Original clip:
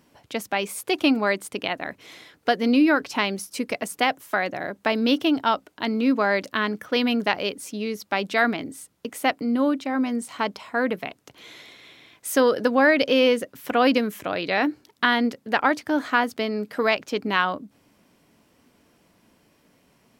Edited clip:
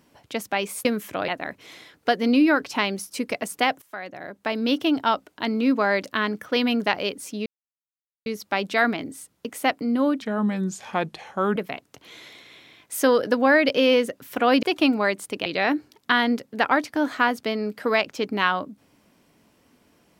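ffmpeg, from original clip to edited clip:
ffmpeg -i in.wav -filter_complex "[0:a]asplit=9[link_01][link_02][link_03][link_04][link_05][link_06][link_07][link_08][link_09];[link_01]atrim=end=0.852[link_10];[link_02]atrim=start=13.958:end=14.392[link_11];[link_03]atrim=start=1.678:end=4.22,asetpts=PTS-STARTPTS,afade=type=out:start_time=2.538:duration=0.004:curve=hsin:silence=0.158489[link_12];[link_04]atrim=start=4.22:end=7.86,asetpts=PTS-STARTPTS,afade=type=in:duration=1.16:silence=0.158489,afade=type=out:start_time=3.636:duration=0.004:curve=hsin,apad=pad_dur=0.8[link_13];[link_05]atrim=start=7.86:end=9.824,asetpts=PTS-STARTPTS,afade=type=in:duration=0.004:curve=hsin[link_14];[link_06]atrim=start=9.82:end=10.89,asetpts=PTS-STARTPTS,asetrate=35280,aresample=44100[link_15];[link_07]atrim=start=10.886:end=13.962[link_16];[link_08]atrim=start=0.848:end=1.682[link_17];[link_09]atrim=start=14.388[link_18];[link_10][link_11]acrossfade=duration=0.004:curve1=hsin:curve2=hsin[link_19];[link_12][link_13][link_14]concat=n=3:v=0:a=1[link_20];[link_19][link_20]acrossfade=duration=0.004:curve1=hsin:curve2=hsin[link_21];[link_21][link_15]acrossfade=duration=0.004:curve1=hsin:curve2=hsin[link_22];[link_22][link_16]acrossfade=duration=0.004:curve1=hsin:curve2=hsin[link_23];[link_23][link_17]acrossfade=duration=0.004:curve1=hsin:curve2=hsin[link_24];[link_24][link_18]acrossfade=duration=0.004:curve1=hsin:curve2=hsin" out.wav

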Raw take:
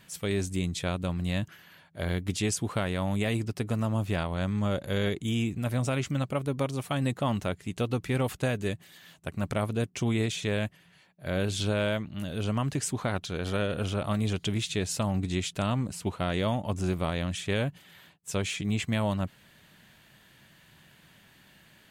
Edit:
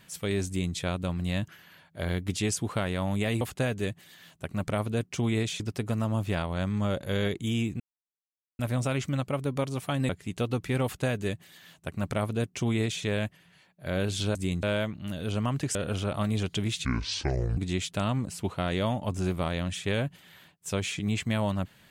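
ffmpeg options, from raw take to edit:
ffmpeg -i in.wav -filter_complex "[0:a]asplit=10[link_01][link_02][link_03][link_04][link_05][link_06][link_07][link_08][link_09][link_10];[link_01]atrim=end=3.412[link_11];[link_02]atrim=start=8.238:end=10.432[link_12];[link_03]atrim=start=3.408:end=5.61,asetpts=PTS-STARTPTS,afade=type=out:start_time=2.198:duration=0.004:curve=hsin,apad=pad_dur=0.79[link_13];[link_04]atrim=start=5.61:end=7.112,asetpts=PTS-STARTPTS,afade=type=in:duration=0.004:curve=hsin[link_14];[link_05]atrim=start=7.488:end=11.752[link_15];[link_06]atrim=start=0.468:end=0.752[link_16];[link_07]atrim=start=11.748:end=12.872[link_17];[link_08]atrim=start=13.648:end=14.754[link_18];[link_09]atrim=start=14.75:end=15.19,asetpts=PTS-STARTPTS,asetrate=26901,aresample=44100[link_19];[link_10]atrim=start=15.186[link_20];[link_11][link_12]acrossfade=duration=0.004:curve1=hsin:curve2=hsin[link_21];[link_13][link_14]concat=n=2:v=0:a=1[link_22];[link_21][link_22]acrossfade=duration=0.004:curve1=hsin:curve2=hsin[link_23];[link_23][link_15]acrossfade=duration=0.004:curve1=hsin:curve2=hsin[link_24];[link_24][link_16]acrossfade=duration=0.004:curve1=hsin:curve2=hsin[link_25];[link_25][link_17]acrossfade=duration=0.004:curve1=hsin:curve2=hsin[link_26];[link_26][link_18]acrossfade=duration=0.004:curve1=hsin:curve2=hsin[link_27];[link_27][link_19]acrossfade=duration=0.004:curve1=hsin:curve2=hsin[link_28];[link_28][link_20]acrossfade=duration=0.004:curve1=hsin:curve2=hsin" out.wav

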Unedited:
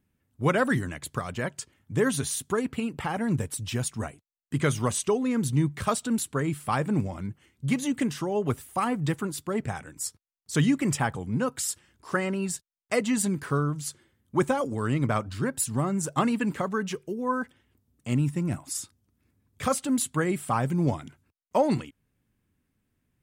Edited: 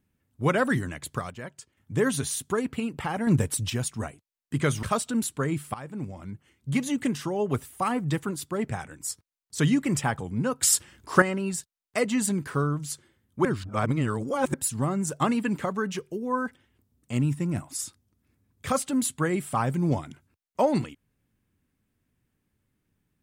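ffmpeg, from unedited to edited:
ffmpeg -i in.wav -filter_complex "[0:a]asplit=11[link_01][link_02][link_03][link_04][link_05][link_06][link_07][link_08][link_09][link_10][link_11];[link_01]atrim=end=1.3,asetpts=PTS-STARTPTS,afade=type=out:start_time=1.14:duration=0.16:curve=log:silence=0.375837[link_12];[link_02]atrim=start=1.3:end=1.77,asetpts=PTS-STARTPTS,volume=-8.5dB[link_13];[link_03]atrim=start=1.77:end=3.272,asetpts=PTS-STARTPTS,afade=type=in:duration=0.16:curve=log:silence=0.375837[link_14];[link_04]atrim=start=3.268:end=3.702,asetpts=PTS-STARTPTS,volume=5dB[link_15];[link_05]atrim=start=3.698:end=4.832[link_16];[link_06]atrim=start=5.788:end=6.7,asetpts=PTS-STARTPTS,afade=type=out:start_time=0.908:duration=0.004:curve=hsin:silence=0.149624[link_17];[link_07]atrim=start=6.7:end=11.592,asetpts=PTS-STARTPTS,afade=type=in:duration=1.03:silence=0.149624[link_18];[link_08]atrim=start=11.588:end=12.182,asetpts=PTS-STARTPTS,volume=9dB[link_19];[link_09]atrim=start=12.178:end=14.412[link_20];[link_10]atrim=start=14.408:end=15.502,asetpts=PTS-STARTPTS,areverse[link_21];[link_11]atrim=start=15.498[link_22];[link_12][link_13][link_14]concat=n=3:v=0:a=1[link_23];[link_23][link_15]acrossfade=duration=0.004:curve1=hsin:curve2=hsin[link_24];[link_24][link_16]acrossfade=duration=0.004:curve1=hsin:curve2=hsin[link_25];[link_17][link_18]concat=n=2:v=0:a=1[link_26];[link_25][link_26]acrossfade=duration=0.004:curve1=hsin:curve2=hsin[link_27];[link_27][link_19]acrossfade=duration=0.004:curve1=hsin:curve2=hsin[link_28];[link_28][link_20]acrossfade=duration=0.004:curve1=hsin:curve2=hsin[link_29];[link_29][link_21]acrossfade=duration=0.004:curve1=hsin:curve2=hsin[link_30];[link_30][link_22]acrossfade=duration=0.004:curve1=hsin:curve2=hsin" out.wav

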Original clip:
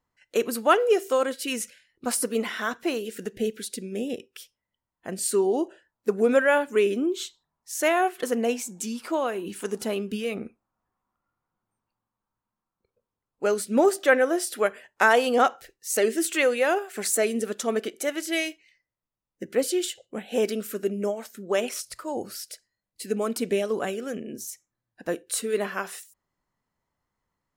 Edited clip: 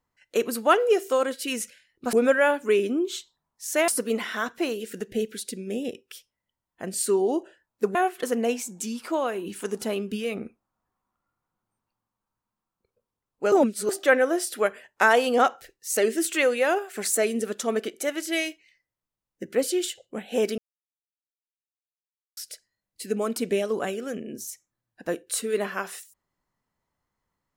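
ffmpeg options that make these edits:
ffmpeg -i in.wav -filter_complex "[0:a]asplit=8[link_01][link_02][link_03][link_04][link_05][link_06][link_07][link_08];[link_01]atrim=end=2.132[link_09];[link_02]atrim=start=6.198:end=7.952[link_10];[link_03]atrim=start=2.128:end=6.202[link_11];[link_04]atrim=start=7.948:end=13.522[link_12];[link_05]atrim=start=13.518:end=13.892,asetpts=PTS-STARTPTS,areverse[link_13];[link_06]atrim=start=13.888:end=20.58,asetpts=PTS-STARTPTS,afade=type=out:start_time=6.688:duration=0.004:curve=hsin[link_14];[link_07]atrim=start=20.58:end=22.37,asetpts=PTS-STARTPTS,volume=0[link_15];[link_08]atrim=start=22.37,asetpts=PTS-STARTPTS,afade=type=in:duration=0.004:curve=hsin[link_16];[link_09][link_10]acrossfade=duration=0.004:curve1=hsin:curve2=hsin[link_17];[link_17][link_11]acrossfade=duration=0.004:curve1=hsin:curve2=hsin[link_18];[link_18][link_12]acrossfade=duration=0.004:curve1=hsin:curve2=hsin[link_19];[link_19][link_13]acrossfade=duration=0.004:curve1=hsin:curve2=hsin[link_20];[link_14][link_15][link_16]concat=n=3:v=0:a=1[link_21];[link_20][link_21]acrossfade=duration=0.004:curve1=hsin:curve2=hsin" out.wav

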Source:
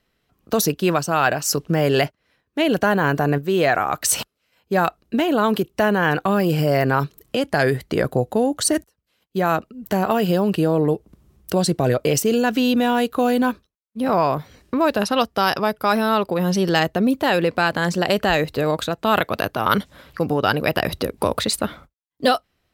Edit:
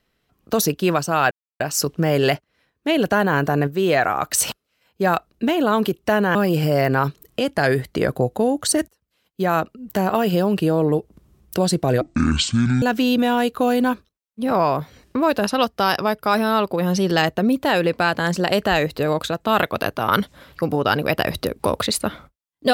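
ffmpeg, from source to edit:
ffmpeg -i in.wav -filter_complex "[0:a]asplit=5[link_01][link_02][link_03][link_04][link_05];[link_01]atrim=end=1.31,asetpts=PTS-STARTPTS,afade=type=out:start_time=1.306:duration=0.004:curve=hsin,apad=pad_dur=0.29[link_06];[link_02]atrim=start=1.31:end=6.062,asetpts=PTS-STARTPTS,afade=type=in:duration=0.004:curve=hsin[link_07];[link_03]atrim=start=6.308:end=11.974[link_08];[link_04]atrim=start=11.97:end=12.4,asetpts=PTS-STARTPTS,asetrate=23373,aresample=44100,atrim=end_sample=35779,asetpts=PTS-STARTPTS[link_09];[link_05]atrim=start=12.396[link_10];[link_06][link_07]concat=n=2:v=0:a=1[link_11];[link_11][link_08]acrossfade=duration=0.004:curve1=hsin:curve2=hsin[link_12];[link_12][link_09]acrossfade=duration=0.004:curve1=hsin:curve2=hsin[link_13];[link_13][link_10]acrossfade=duration=0.004:curve1=hsin:curve2=hsin" out.wav

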